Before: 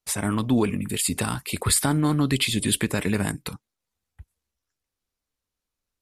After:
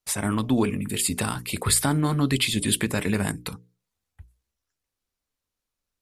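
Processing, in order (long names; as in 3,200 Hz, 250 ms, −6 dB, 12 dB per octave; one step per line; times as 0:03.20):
mains-hum notches 60/120/180/240/300/360/420/480 Hz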